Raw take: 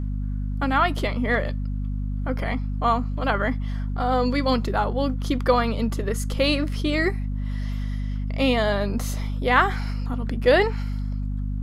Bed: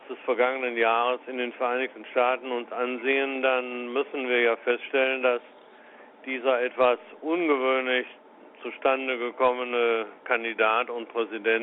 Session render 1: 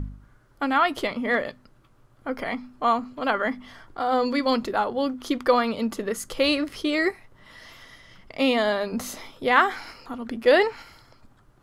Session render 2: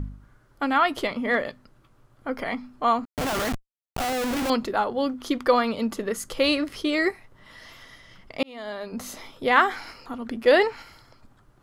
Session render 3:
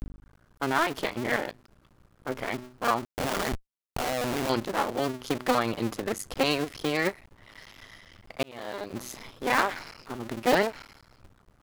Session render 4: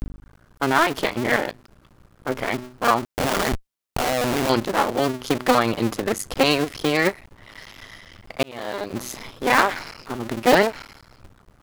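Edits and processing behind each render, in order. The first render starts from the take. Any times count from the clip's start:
de-hum 50 Hz, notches 5
3.05–4.5 Schmitt trigger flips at -32.5 dBFS; 8.43–9.34 fade in
cycle switcher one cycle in 2, muted; soft clip -12 dBFS, distortion -17 dB
gain +7 dB

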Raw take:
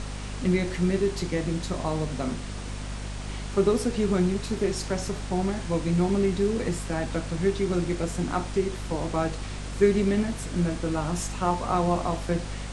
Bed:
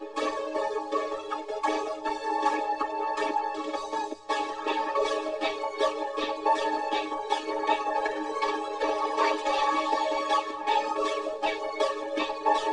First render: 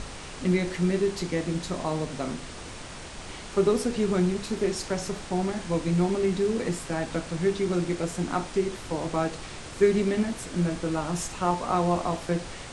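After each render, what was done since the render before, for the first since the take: notches 50/100/150/200/250 Hz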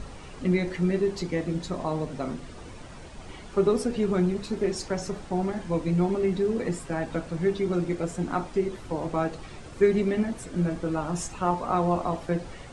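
denoiser 10 dB, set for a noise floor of -40 dBFS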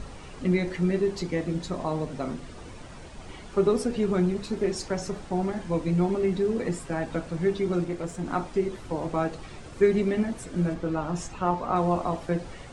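7.84–8.26 tube stage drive 22 dB, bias 0.45; 10.74–11.76 air absorption 58 m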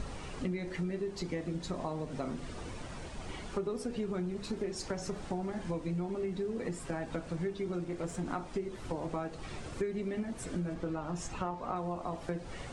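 compressor 6:1, threshold -33 dBFS, peak gain reduction 16.5 dB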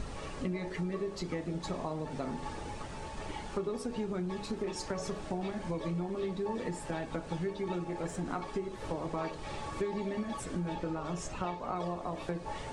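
add bed -18 dB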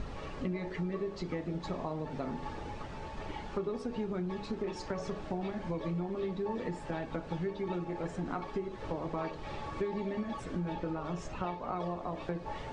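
air absorption 120 m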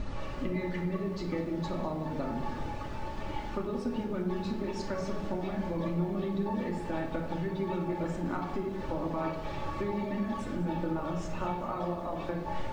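shoebox room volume 1900 m³, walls furnished, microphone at 2.5 m; lo-fi delay 0.198 s, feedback 55%, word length 9-bit, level -15 dB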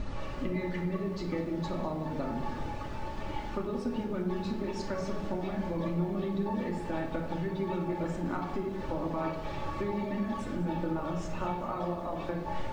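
nothing audible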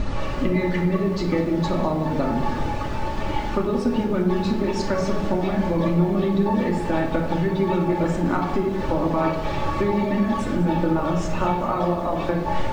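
gain +11.5 dB

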